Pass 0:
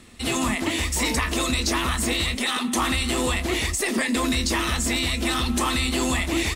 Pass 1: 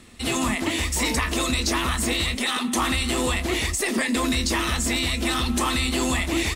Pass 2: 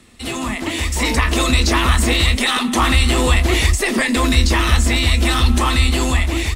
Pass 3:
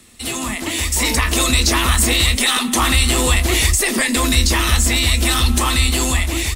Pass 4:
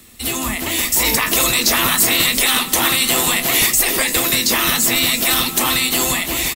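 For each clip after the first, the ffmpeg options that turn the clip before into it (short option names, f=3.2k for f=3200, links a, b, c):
-af anull
-filter_complex "[0:a]asubboost=boost=3:cutoff=110,acrossover=split=110|4300[a][b][c];[c]alimiter=limit=-23dB:level=0:latency=1:release=466[d];[a][b][d]amix=inputs=3:normalize=0,dynaudnorm=f=380:g=5:m=11.5dB"
-af "crystalizer=i=2:c=0,volume=-2dB"
-af "aexciter=amount=5.8:drive=1.3:freq=12k,afftfilt=real='re*lt(hypot(re,im),0.631)':imag='im*lt(hypot(re,im),0.631)':win_size=1024:overlap=0.75,aecho=1:1:342|684|1026|1368:0.237|0.0949|0.0379|0.0152,volume=1.5dB"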